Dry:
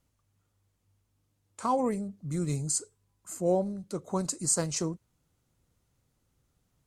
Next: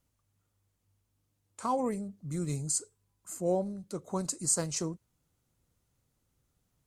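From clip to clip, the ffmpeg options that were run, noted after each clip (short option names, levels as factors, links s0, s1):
-af "highshelf=f=8900:g=4.5,volume=0.708"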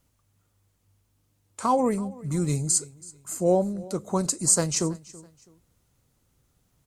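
-af "aecho=1:1:328|656:0.0891|0.0285,volume=2.51"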